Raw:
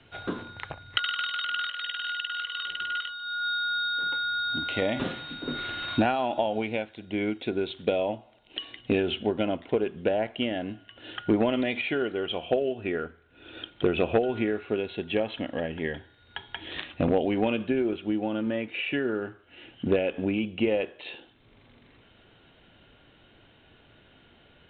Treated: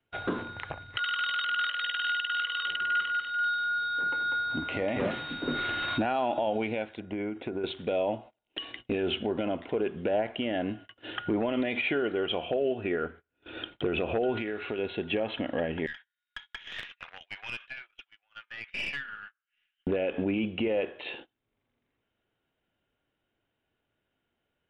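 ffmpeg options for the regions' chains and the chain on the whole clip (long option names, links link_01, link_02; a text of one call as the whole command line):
ffmpeg -i in.wav -filter_complex "[0:a]asettb=1/sr,asplit=3[link_01][link_02][link_03];[link_01]atrim=end=2.764[link_04];[link_02]atrim=start=2.76:end=5.11,asetpts=PTS-STARTPTS,afade=type=in:duration=0.004:curve=qsin,afade=type=out:start_time=2.346:duration=0.004:curve=qsin,equalizer=frequency=3500:width_type=o:width=0.54:gain=-7.5,aecho=1:1:195|390|585|780|975:0.562|0.225|0.09|0.036|0.0144,atrim=end_sample=103635[link_05];[link_03]atrim=start=5.106[link_06];[link_04][link_05]acrossfade=duration=0.004:curve1=hsin:curve2=qsin[link_07];[link_07][link_06]acrossfade=duration=0.004:curve1=qsin:curve2=hsin,asettb=1/sr,asplit=3[link_08][link_09][link_10];[link_08]atrim=end=7.004[link_11];[link_09]atrim=start=7:end=7.64,asetpts=PTS-STARTPTS,afade=type=in:duration=0.004:curve=qsin,afade=type=out:start_time=0.636:duration=0.004:curve=qsin,lowpass=2000,acompressor=threshold=-32dB:ratio=10:attack=3.2:release=140:knee=1:detection=peak[link_12];[link_10]atrim=start=7.636[link_13];[link_11][link_12]acrossfade=duration=0.004:curve1=hsin:curve2=qsin[link_14];[link_14][link_13]acrossfade=duration=0.004:curve1=qsin:curve2=hsin,asettb=1/sr,asplit=3[link_15][link_16][link_17];[link_15]atrim=end=14.374[link_18];[link_16]atrim=start=14.37:end=14.79,asetpts=PTS-STARTPTS,afade=type=in:duration=0.004:curve=qsin,afade=type=out:start_time=0.416:duration=0.004:curve=qsin,highshelf=frequency=2100:gain=12,acompressor=threshold=-33dB:ratio=5:attack=3.2:release=140:knee=1:detection=peak[link_19];[link_17]atrim=start=14.786[link_20];[link_18][link_19]acrossfade=duration=0.004:curve1=hsin:curve2=qsin[link_21];[link_21][link_20]acrossfade=duration=0.004:curve1=qsin:curve2=hsin,asettb=1/sr,asplit=3[link_22][link_23][link_24];[link_22]atrim=end=15.864[link_25];[link_23]atrim=start=15.86:end=19.87,asetpts=PTS-STARTPTS,afade=type=in:duration=0.004:curve=qsin,afade=type=out:start_time=4.006:duration=0.004:curve=qsin,highpass=frequency=1400:width=0.5412,highpass=frequency=1400:width=1.3066,aeval=exprs='(tanh(31.6*val(0)+0.6)-tanh(0.6))/31.6':channel_layout=same[link_26];[link_24]atrim=start=19.866[link_27];[link_25][link_26]acrossfade=duration=0.004:curve1=hsin:curve2=qsin[link_28];[link_28][link_27]acrossfade=duration=0.004:curve1=qsin:curve2=hsin,bass=frequency=250:gain=-3,treble=frequency=4000:gain=-11,alimiter=limit=-23.5dB:level=0:latency=1:release=51,agate=range=-26dB:threshold=-49dB:ratio=16:detection=peak,volume=4dB" out.wav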